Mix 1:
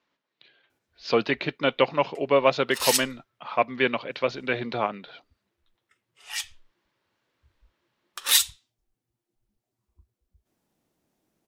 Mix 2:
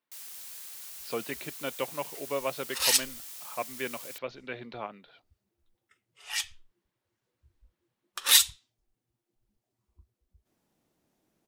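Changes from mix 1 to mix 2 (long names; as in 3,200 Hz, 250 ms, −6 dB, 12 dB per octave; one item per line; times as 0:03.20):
speech −12.0 dB
first sound: unmuted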